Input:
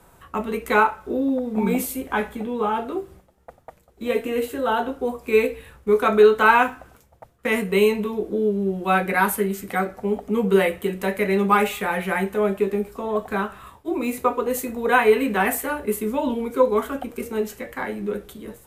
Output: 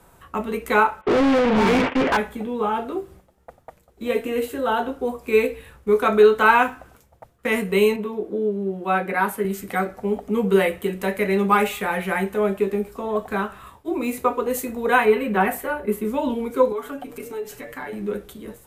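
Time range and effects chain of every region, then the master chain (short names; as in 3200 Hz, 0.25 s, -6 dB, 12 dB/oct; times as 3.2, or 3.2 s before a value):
1.01–2.17 CVSD 16 kbps + gate -42 dBFS, range -32 dB + overdrive pedal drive 37 dB, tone 2200 Hz, clips at -11 dBFS
7.96–9.45 HPF 220 Hz 6 dB/oct + high shelf 2600 Hz -9 dB
15.05–16.05 bell 8000 Hz -9.5 dB 2.6 oct + comb 5.4 ms, depth 49%
16.72–17.93 comb 6.9 ms, depth 84% + compressor 2:1, threshold -34 dBFS
whole clip: dry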